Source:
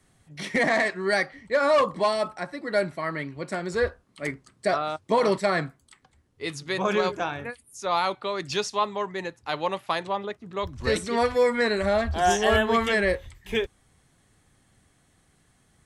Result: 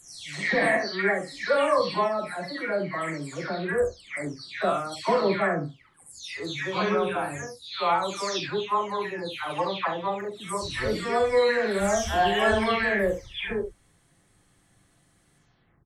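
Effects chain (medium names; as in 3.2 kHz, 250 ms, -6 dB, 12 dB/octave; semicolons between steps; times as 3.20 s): delay that grows with frequency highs early, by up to 468 ms; early reflections 41 ms -8.5 dB, 68 ms -9 dB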